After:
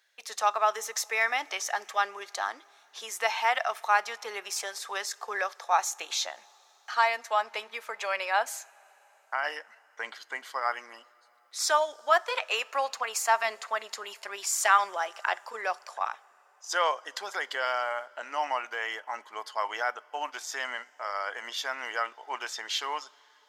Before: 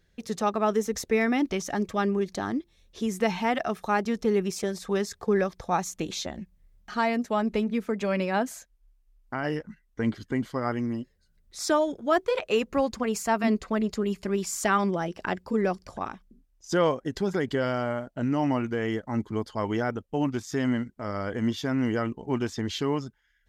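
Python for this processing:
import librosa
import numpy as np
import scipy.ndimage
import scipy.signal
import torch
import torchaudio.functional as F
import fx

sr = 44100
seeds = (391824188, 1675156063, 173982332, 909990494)

y = scipy.signal.sosfilt(scipy.signal.butter(4, 750.0, 'highpass', fs=sr, output='sos'), x)
y = fx.rev_double_slope(y, sr, seeds[0], early_s=0.3, late_s=4.5, knee_db=-18, drr_db=18.0)
y = y * librosa.db_to_amplitude(4.0)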